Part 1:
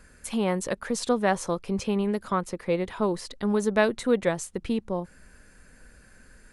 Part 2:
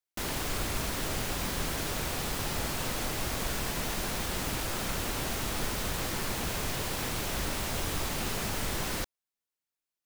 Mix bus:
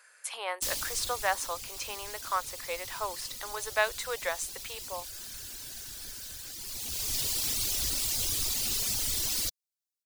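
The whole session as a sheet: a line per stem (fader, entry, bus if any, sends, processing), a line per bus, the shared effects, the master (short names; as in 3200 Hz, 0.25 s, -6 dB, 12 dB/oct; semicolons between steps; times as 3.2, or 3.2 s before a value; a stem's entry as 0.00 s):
+0.5 dB, 0.00 s, no send, Bessel high-pass 930 Hz, order 6
-1.5 dB, 0.45 s, no send, reverb removal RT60 1.7 s; EQ curve 160 Hz 0 dB, 610 Hz -7 dB, 1600 Hz -6 dB, 4700 Hz +13 dB; auto duck -12 dB, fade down 1.60 s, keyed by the first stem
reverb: off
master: bell 170 Hz -13 dB 0.35 oct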